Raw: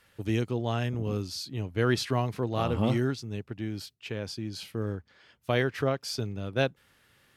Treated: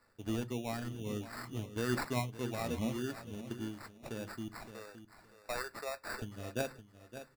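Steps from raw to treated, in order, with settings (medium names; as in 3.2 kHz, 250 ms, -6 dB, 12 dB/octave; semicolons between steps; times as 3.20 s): reverb removal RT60 0.61 s; 4.48–6.22 s: high-pass 540 Hz 24 dB/octave; in parallel at -2.5 dB: peak limiter -23.5 dBFS, peak gain reduction 10.5 dB; on the sum: sample-and-hold 14×; feedback delay 566 ms, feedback 22%, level -12.5 dB; on a send at -11.5 dB: reverberation RT60 0.25 s, pre-delay 3 ms; on the sum: random flutter of the level, depth 60%; trim -8 dB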